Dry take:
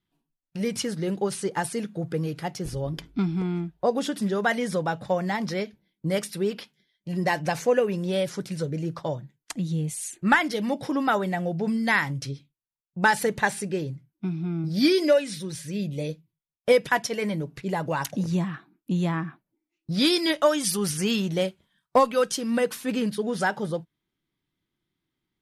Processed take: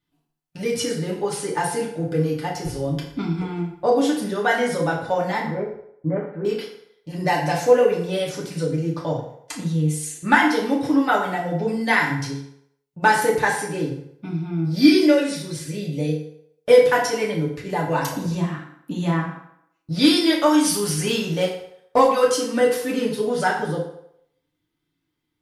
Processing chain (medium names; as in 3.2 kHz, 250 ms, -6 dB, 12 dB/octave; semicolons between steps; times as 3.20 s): 5.40–6.45 s: steep low-pass 1.6 kHz 36 dB/octave; FDN reverb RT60 0.73 s, low-frequency decay 0.7×, high-frequency decay 0.75×, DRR -4 dB; trim -1 dB